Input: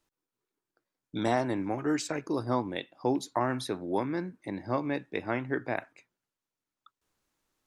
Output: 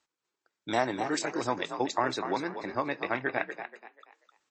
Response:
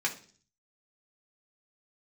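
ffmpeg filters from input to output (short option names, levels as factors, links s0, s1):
-filter_complex "[0:a]highpass=71,lowshelf=f=460:g=-12,asplit=5[s0][s1][s2][s3][s4];[s1]adelay=412,afreqshift=50,volume=0.376[s5];[s2]adelay=824,afreqshift=100,volume=0.12[s6];[s3]adelay=1236,afreqshift=150,volume=0.0385[s7];[s4]adelay=1648,afreqshift=200,volume=0.0123[s8];[s0][s5][s6][s7][s8]amix=inputs=5:normalize=0,acontrast=20,atempo=1.7,asplit=2[s9][s10];[1:a]atrim=start_sample=2205,lowpass=6600[s11];[s10][s11]afir=irnorm=-1:irlink=0,volume=0.1[s12];[s9][s12]amix=inputs=2:normalize=0" -ar 24000 -c:a libmp3lame -b:a 32k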